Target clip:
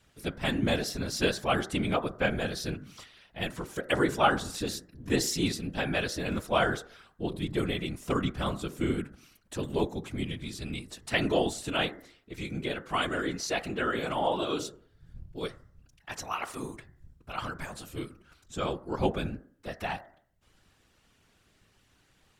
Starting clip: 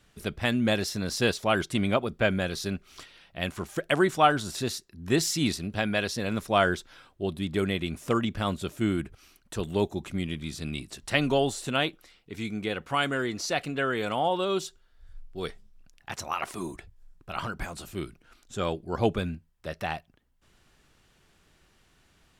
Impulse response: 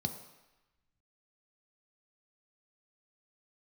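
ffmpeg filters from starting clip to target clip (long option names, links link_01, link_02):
-af "bandreject=frequency=63.78:width_type=h:width=4,bandreject=frequency=127.56:width_type=h:width=4,bandreject=frequency=191.34:width_type=h:width=4,bandreject=frequency=255.12:width_type=h:width=4,bandreject=frequency=318.9:width_type=h:width=4,bandreject=frequency=382.68:width_type=h:width=4,bandreject=frequency=446.46:width_type=h:width=4,bandreject=frequency=510.24:width_type=h:width=4,bandreject=frequency=574.02:width_type=h:width=4,bandreject=frequency=637.8:width_type=h:width=4,bandreject=frequency=701.58:width_type=h:width=4,bandreject=frequency=765.36:width_type=h:width=4,bandreject=frequency=829.14:width_type=h:width=4,bandreject=frequency=892.92:width_type=h:width=4,bandreject=frequency=956.7:width_type=h:width=4,bandreject=frequency=1020.48:width_type=h:width=4,bandreject=frequency=1084.26:width_type=h:width=4,bandreject=frequency=1148.04:width_type=h:width=4,bandreject=frequency=1211.82:width_type=h:width=4,bandreject=frequency=1275.6:width_type=h:width=4,bandreject=frequency=1339.38:width_type=h:width=4,bandreject=frequency=1403.16:width_type=h:width=4,bandreject=frequency=1466.94:width_type=h:width=4,bandreject=frequency=1530.72:width_type=h:width=4,bandreject=frequency=1594.5:width_type=h:width=4,bandreject=frequency=1658.28:width_type=h:width=4,bandreject=frequency=1722.06:width_type=h:width=4,bandreject=frequency=1785.84:width_type=h:width=4,bandreject=frequency=1849.62:width_type=h:width=4,bandreject=frequency=1913.4:width_type=h:width=4,bandreject=frequency=1977.18:width_type=h:width=4,bandreject=frequency=2040.96:width_type=h:width=4,afftfilt=real='hypot(re,im)*cos(2*PI*random(0))':imag='hypot(re,im)*sin(2*PI*random(1))':win_size=512:overlap=0.75,volume=4dB"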